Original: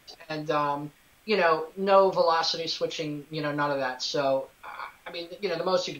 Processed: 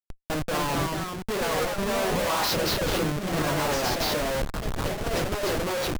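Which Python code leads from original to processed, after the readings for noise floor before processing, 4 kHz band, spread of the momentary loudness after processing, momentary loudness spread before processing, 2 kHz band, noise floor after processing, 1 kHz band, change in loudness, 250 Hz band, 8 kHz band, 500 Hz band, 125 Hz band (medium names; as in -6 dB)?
-59 dBFS, +2.0 dB, 6 LU, 17 LU, +2.5 dB, -42 dBFS, -1.5 dB, 0.0 dB, +4.0 dB, no reading, -2.0 dB, +8.5 dB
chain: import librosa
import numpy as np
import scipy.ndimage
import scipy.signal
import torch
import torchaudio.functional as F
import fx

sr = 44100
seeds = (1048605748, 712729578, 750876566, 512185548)

y = fx.vibrato(x, sr, rate_hz=0.69, depth_cents=24.0)
y = fx.schmitt(y, sr, flips_db=-32.5)
y = fx.echo_pitch(y, sr, ms=269, semitones=2, count=2, db_per_echo=-3.0)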